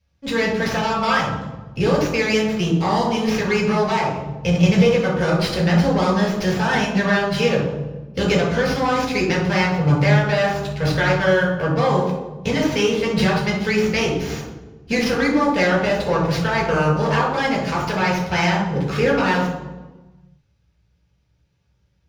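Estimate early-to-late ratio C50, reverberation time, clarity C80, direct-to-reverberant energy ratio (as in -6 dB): 4.0 dB, 1.2 s, 7.5 dB, -2.5 dB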